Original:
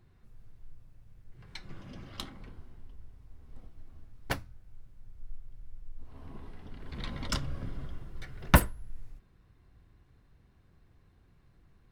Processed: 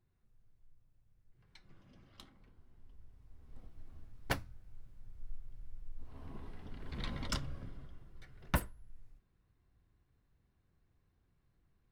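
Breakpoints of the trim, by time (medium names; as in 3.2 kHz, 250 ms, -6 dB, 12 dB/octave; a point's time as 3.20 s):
2.54 s -15.5 dB
2.89 s -9 dB
3.89 s -2 dB
7.13 s -2 dB
7.90 s -12 dB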